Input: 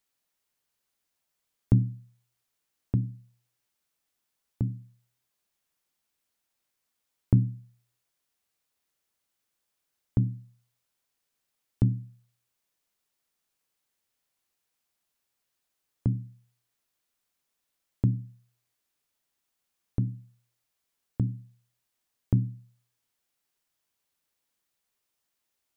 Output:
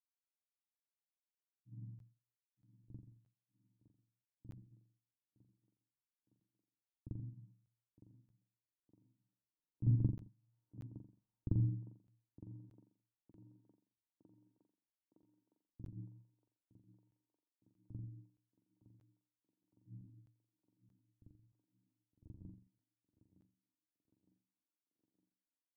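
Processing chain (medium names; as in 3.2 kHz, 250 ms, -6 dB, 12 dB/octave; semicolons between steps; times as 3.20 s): Doppler pass-by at 10.93 s, 9 m/s, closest 4 m; steep low-pass 1.1 kHz 36 dB/octave; peaking EQ 870 Hz -11.5 dB 2.6 oct; feedback comb 310 Hz, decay 0.44 s, harmonics odd, mix 90%; granulator, spray 100 ms, pitch spread up and down by 0 st; thinning echo 912 ms, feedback 80%, high-pass 310 Hz, level -10.5 dB; reverberation, pre-delay 43 ms, DRR -8 dB; crackling interface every 0.63 s, samples 512, zero, from 0.73 s; trim +13 dB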